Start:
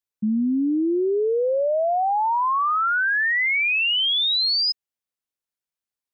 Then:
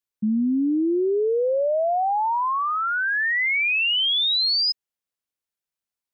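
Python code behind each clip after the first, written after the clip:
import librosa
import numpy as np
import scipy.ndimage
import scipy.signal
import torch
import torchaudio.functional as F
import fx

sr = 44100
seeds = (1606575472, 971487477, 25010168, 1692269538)

y = fx.dynamic_eq(x, sr, hz=1300.0, q=1.6, threshold_db=-36.0, ratio=4.0, max_db=-3)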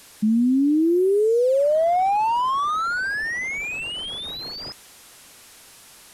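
y = fx.delta_mod(x, sr, bps=64000, step_db=-43.5)
y = y * 10.0 ** (3.0 / 20.0)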